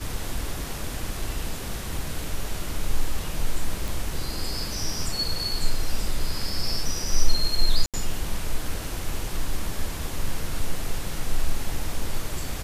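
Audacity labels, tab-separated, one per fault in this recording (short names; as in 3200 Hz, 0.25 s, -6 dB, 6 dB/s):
3.880000	3.880000	pop
7.860000	7.940000	gap 77 ms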